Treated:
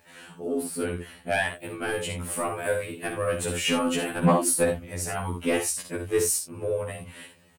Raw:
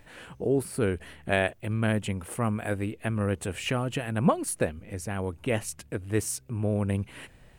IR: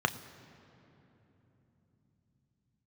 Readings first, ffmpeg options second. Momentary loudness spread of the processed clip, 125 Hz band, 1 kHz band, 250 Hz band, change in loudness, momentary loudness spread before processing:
11 LU, -4.0 dB, +3.5 dB, 0.0 dB, +2.5 dB, 8 LU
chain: -af "highpass=130,dynaudnorm=f=300:g=11:m=7dB,highshelf=f=4.5k:g=6,aecho=1:1:55|78:0.447|0.282,asoftclip=type=tanh:threshold=-9.5dB,afftfilt=real='re*2*eq(mod(b,4),0)':imag='im*2*eq(mod(b,4),0)':win_size=2048:overlap=0.75"

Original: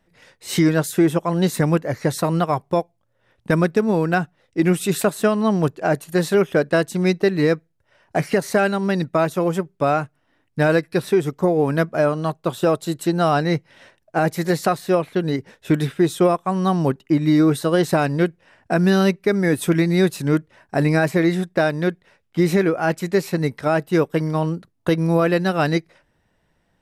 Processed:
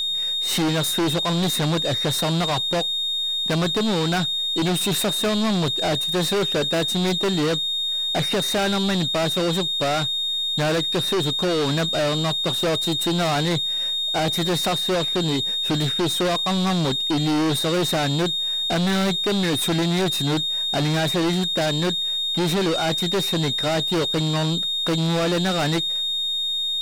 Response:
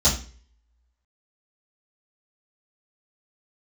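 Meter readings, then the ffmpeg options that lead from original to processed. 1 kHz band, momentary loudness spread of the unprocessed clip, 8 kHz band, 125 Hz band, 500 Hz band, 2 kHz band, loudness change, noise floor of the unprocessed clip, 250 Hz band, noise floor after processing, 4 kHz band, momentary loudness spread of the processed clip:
-3.0 dB, 6 LU, +4.5 dB, -2.5 dB, -5.0 dB, -3.0 dB, -1.0 dB, -67 dBFS, -4.0 dB, -25 dBFS, +16.0 dB, 1 LU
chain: -af "highpass=77,aeval=exprs='val(0)+0.0501*sin(2*PI*3700*n/s)':c=same,aeval=exprs='(tanh(17.8*val(0)+0.2)-tanh(0.2))/17.8':c=same,volume=6dB"

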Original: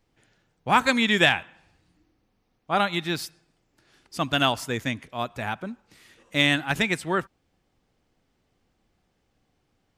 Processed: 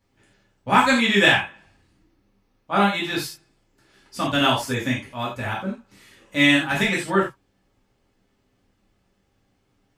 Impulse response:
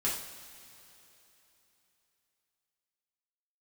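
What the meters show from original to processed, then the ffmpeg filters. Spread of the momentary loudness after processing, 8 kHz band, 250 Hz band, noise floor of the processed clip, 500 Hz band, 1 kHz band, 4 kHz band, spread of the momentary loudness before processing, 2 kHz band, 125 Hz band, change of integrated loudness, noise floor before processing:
16 LU, +3.0 dB, +5.0 dB, -68 dBFS, +3.5 dB, +3.5 dB, +2.5 dB, 13 LU, +4.0 dB, +3.0 dB, +3.5 dB, -72 dBFS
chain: -filter_complex "[1:a]atrim=start_sample=2205,atrim=end_sample=4410[a];[0:a][a]afir=irnorm=-1:irlink=0,volume=-2dB"

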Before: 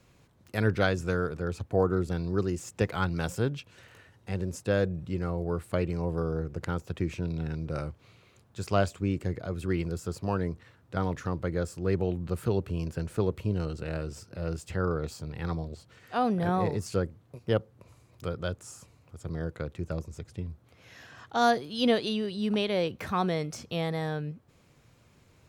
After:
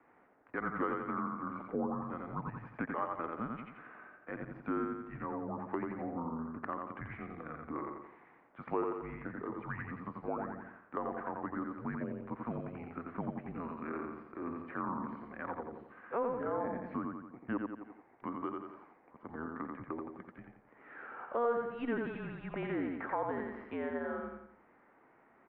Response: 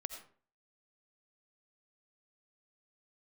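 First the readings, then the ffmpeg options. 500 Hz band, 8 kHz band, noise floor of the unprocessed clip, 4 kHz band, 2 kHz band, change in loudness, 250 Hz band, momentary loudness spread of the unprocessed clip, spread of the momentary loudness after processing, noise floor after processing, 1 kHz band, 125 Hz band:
-9.0 dB, under -35 dB, -62 dBFS, under -25 dB, -7.0 dB, -8.5 dB, -7.0 dB, 13 LU, 13 LU, -65 dBFS, -5.0 dB, -17.0 dB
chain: -af "highpass=f=550:t=q:w=0.5412,highpass=f=550:t=q:w=1.307,lowpass=f=2.1k:t=q:w=0.5176,lowpass=f=2.1k:t=q:w=0.7071,lowpass=f=2.1k:t=q:w=1.932,afreqshift=-240,aecho=1:1:87|174|261|348|435:0.631|0.259|0.106|0.0435|0.0178,acompressor=threshold=-42dB:ratio=2,volume=3.5dB"

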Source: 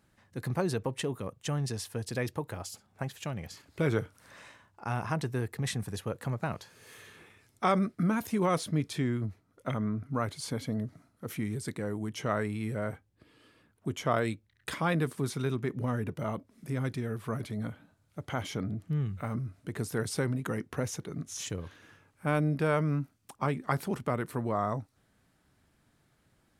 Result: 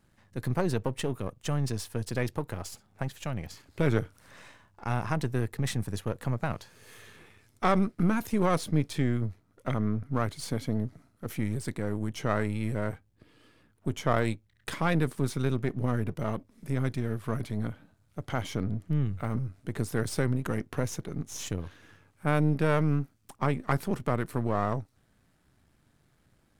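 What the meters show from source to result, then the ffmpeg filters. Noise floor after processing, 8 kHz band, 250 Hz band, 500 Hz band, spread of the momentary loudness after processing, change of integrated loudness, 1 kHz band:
-68 dBFS, 0.0 dB, +2.5 dB, +1.5 dB, 11 LU, +2.5 dB, +1.0 dB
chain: -af "aeval=exprs='if(lt(val(0),0),0.447*val(0),val(0))':c=same,lowshelf=f=220:g=4,volume=2.5dB"

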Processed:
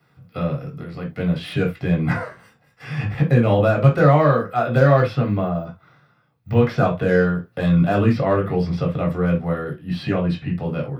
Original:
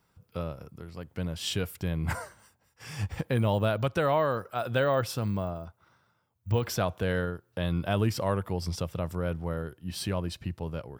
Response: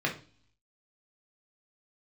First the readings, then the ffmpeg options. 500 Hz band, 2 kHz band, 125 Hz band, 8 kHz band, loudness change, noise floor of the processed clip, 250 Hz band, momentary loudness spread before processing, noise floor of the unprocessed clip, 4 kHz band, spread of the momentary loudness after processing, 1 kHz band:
+10.5 dB, +9.5 dB, +11.5 dB, under -10 dB, +11.0 dB, -60 dBFS, +13.0 dB, 15 LU, -71 dBFS, +0.5 dB, 12 LU, +9.5 dB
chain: -filter_complex "[0:a]acrossover=split=420|1600|3700[a][b][c][d];[c]aeval=exprs='0.0119*(abs(mod(val(0)/0.0119+3,4)-2)-1)':c=same[e];[d]acompressor=threshold=-58dB:ratio=6[f];[a][b][e][f]amix=inputs=4:normalize=0[g];[1:a]atrim=start_sample=2205,atrim=end_sample=3969[h];[g][h]afir=irnorm=-1:irlink=0,volume=2dB"

